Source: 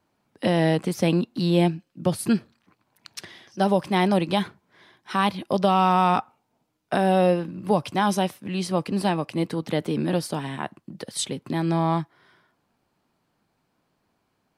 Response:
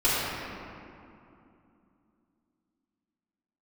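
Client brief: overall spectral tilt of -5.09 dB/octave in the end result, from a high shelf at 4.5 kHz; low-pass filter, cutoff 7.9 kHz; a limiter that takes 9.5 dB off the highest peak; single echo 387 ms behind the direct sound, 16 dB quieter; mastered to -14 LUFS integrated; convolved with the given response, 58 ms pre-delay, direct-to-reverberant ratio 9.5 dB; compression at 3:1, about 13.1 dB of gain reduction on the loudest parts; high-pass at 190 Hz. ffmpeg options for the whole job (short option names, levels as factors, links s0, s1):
-filter_complex "[0:a]highpass=190,lowpass=7900,highshelf=f=4500:g=-7.5,acompressor=threshold=0.02:ratio=3,alimiter=level_in=1.58:limit=0.0631:level=0:latency=1,volume=0.631,aecho=1:1:387:0.158,asplit=2[s0][s1];[1:a]atrim=start_sample=2205,adelay=58[s2];[s1][s2]afir=irnorm=-1:irlink=0,volume=0.0531[s3];[s0][s3]amix=inputs=2:normalize=0,volume=16.8"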